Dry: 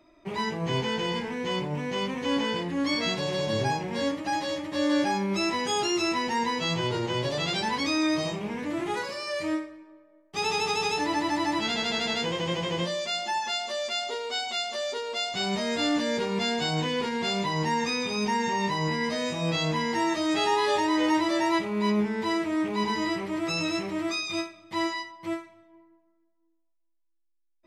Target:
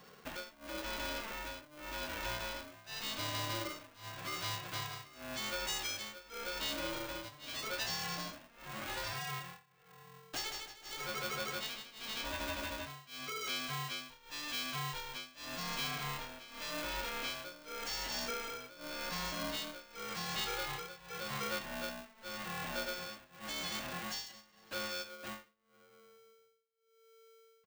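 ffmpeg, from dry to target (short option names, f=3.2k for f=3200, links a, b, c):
-filter_complex "[0:a]equalizer=f=340:t=o:w=1.1:g=-15,aecho=1:1:1.8:0.69,asplit=2[a][b];[b]aeval=exprs='clip(val(0),-1,0.0126)':c=same,volume=-10dB[c];[a][c]amix=inputs=2:normalize=0,tremolo=f=0.88:d=0.97,acompressor=threshold=-46dB:ratio=2.5,aeval=exprs='val(0)*sgn(sin(2*PI*450*n/s))':c=same,volume=3dB"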